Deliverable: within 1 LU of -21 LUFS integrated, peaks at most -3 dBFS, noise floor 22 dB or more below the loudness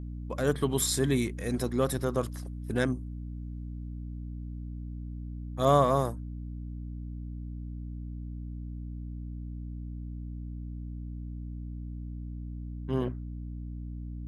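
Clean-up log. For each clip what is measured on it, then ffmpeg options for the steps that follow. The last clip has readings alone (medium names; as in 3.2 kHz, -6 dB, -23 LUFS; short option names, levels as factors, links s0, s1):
hum 60 Hz; highest harmonic 300 Hz; hum level -36 dBFS; loudness -33.5 LUFS; peak level -9.5 dBFS; loudness target -21.0 LUFS
-> -af "bandreject=f=60:t=h:w=6,bandreject=f=120:t=h:w=6,bandreject=f=180:t=h:w=6,bandreject=f=240:t=h:w=6,bandreject=f=300:t=h:w=6"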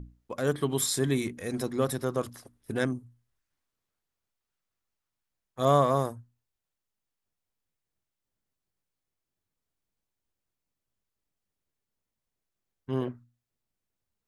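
hum not found; loudness -29.0 LUFS; peak level -9.5 dBFS; loudness target -21.0 LUFS
-> -af "volume=2.51,alimiter=limit=0.708:level=0:latency=1"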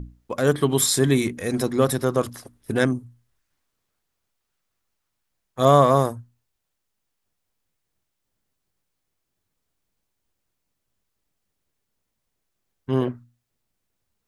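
loudness -21.5 LUFS; peak level -3.0 dBFS; noise floor -79 dBFS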